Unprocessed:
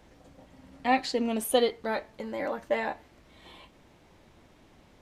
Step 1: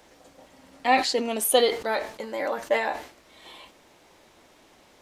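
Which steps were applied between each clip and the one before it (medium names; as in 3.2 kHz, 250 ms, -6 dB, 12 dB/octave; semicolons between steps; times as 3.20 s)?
tone controls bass -13 dB, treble +5 dB; decay stretcher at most 120 dB/s; trim +4.5 dB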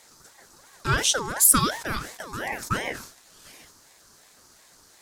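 FFT filter 1.2 kHz 0 dB, 3 kHz -10 dB, 5.1 kHz +13 dB; ring modulator with a swept carrier 1 kHz, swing 40%, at 2.8 Hz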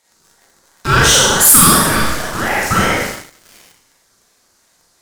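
Schroeder reverb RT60 1 s, combs from 33 ms, DRR -5.5 dB; waveshaping leveller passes 3; trim -2.5 dB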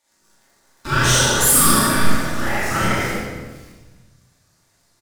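delay 279 ms -17 dB; simulated room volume 840 m³, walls mixed, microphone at 2.5 m; trim -10.5 dB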